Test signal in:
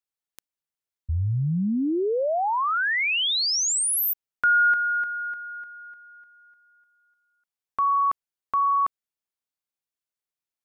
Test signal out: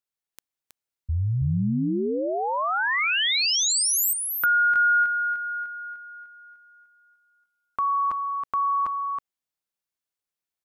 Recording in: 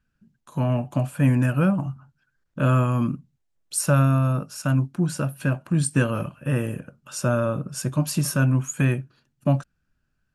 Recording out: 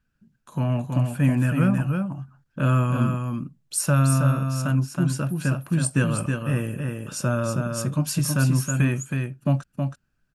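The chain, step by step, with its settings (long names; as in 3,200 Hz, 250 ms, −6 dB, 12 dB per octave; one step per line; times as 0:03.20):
single-tap delay 321 ms −5 dB
dynamic equaliser 590 Hz, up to −4 dB, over −33 dBFS, Q 0.72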